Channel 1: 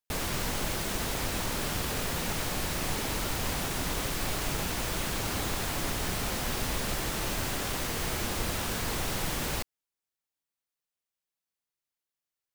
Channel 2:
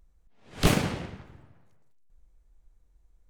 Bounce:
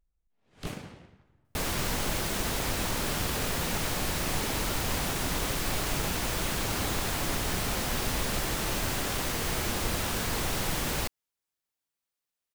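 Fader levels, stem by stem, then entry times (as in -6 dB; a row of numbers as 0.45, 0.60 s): +1.5, -15.5 dB; 1.45, 0.00 s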